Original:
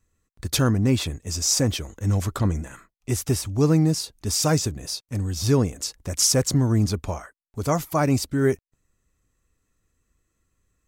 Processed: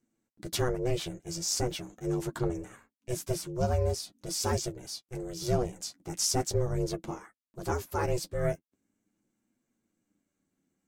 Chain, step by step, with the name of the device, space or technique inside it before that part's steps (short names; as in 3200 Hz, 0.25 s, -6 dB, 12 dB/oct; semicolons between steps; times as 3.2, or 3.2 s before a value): alien voice (ring modulator 250 Hz; flange 0.42 Hz, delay 8.5 ms, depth 2.9 ms, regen -25%); gain -2.5 dB